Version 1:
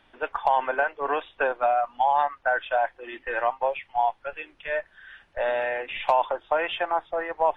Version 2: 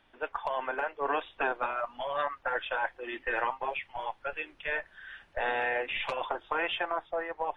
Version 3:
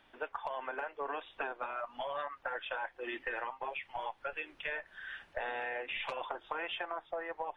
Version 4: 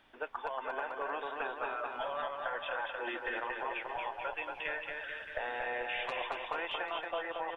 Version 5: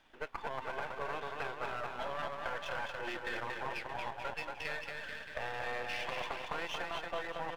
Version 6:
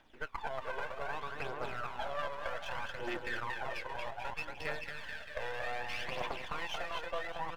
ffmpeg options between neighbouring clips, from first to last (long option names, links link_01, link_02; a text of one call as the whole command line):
ffmpeg -i in.wav -af "dynaudnorm=framelen=240:gausssize=9:maxgain=6dB,afftfilt=real='re*lt(hypot(re,im),0.631)':imag='im*lt(hypot(re,im),0.631)':win_size=1024:overlap=0.75,volume=-5.5dB" out.wav
ffmpeg -i in.wav -af "lowshelf=frequency=130:gain=-5.5,acompressor=threshold=-37dB:ratio=6,volume=1.5dB" out.wav
ffmpeg -i in.wav -af "aecho=1:1:230|437|623.3|791|941.9:0.631|0.398|0.251|0.158|0.1" out.wav
ffmpeg -i in.wav -af "aeval=exprs='if(lt(val(0),0),0.251*val(0),val(0))':channel_layout=same,volume=1.5dB" out.wav
ffmpeg -i in.wav -af "aphaser=in_gain=1:out_gain=1:delay=2.1:decay=0.52:speed=0.64:type=triangular,volume=-1.5dB" out.wav